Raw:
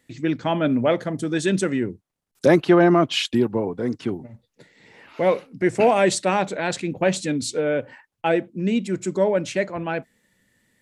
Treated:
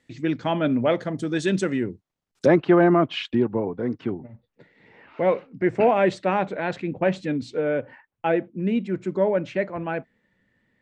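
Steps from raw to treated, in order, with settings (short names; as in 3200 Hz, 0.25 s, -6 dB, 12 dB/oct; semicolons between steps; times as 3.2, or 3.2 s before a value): LPF 6300 Hz 12 dB/oct, from 2.46 s 2400 Hz; gain -1.5 dB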